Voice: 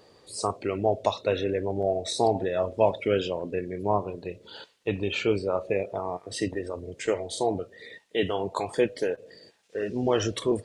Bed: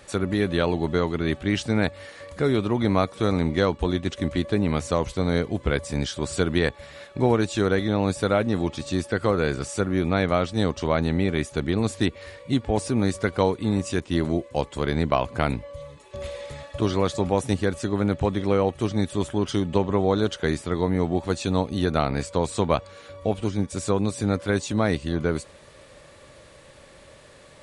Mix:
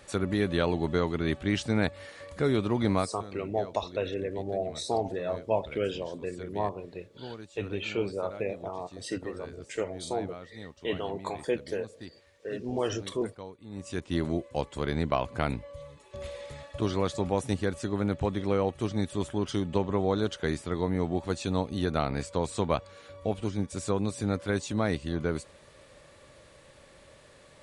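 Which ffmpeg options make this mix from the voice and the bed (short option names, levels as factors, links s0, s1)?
-filter_complex "[0:a]adelay=2700,volume=0.531[s0];[1:a]volume=4.22,afade=t=out:st=2.91:d=0.32:silence=0.125893,afade=t=in:st=13.69:d=0.41:silence=0.149624[s1];[s0][s1]amix=inputs=2:normalize=0"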